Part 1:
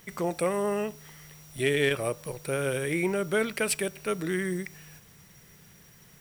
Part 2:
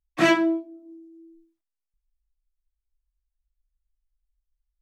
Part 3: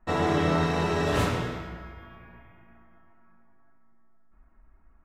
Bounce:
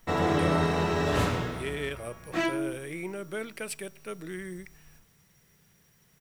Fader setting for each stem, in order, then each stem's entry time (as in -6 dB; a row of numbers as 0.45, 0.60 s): -9.0, -9.5, -1.0 dB; 0.00, 2.15, 0.00 s